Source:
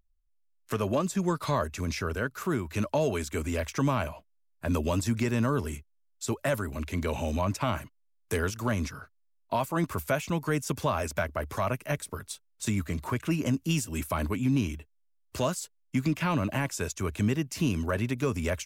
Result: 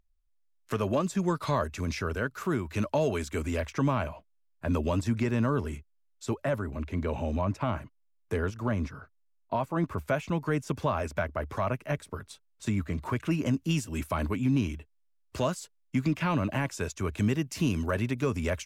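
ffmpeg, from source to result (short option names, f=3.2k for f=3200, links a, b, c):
-af "asetnsamples=n=441:p=0,asendcmd='3.61 lowpass f 2700;6.45 lowpass f 1300;10.08 lowpass f 2300;13.05 lowpass f 4300;17.18 lowpass f 9500;18.06 lowpass f 5500',lowpass=f=5.7k:p=1"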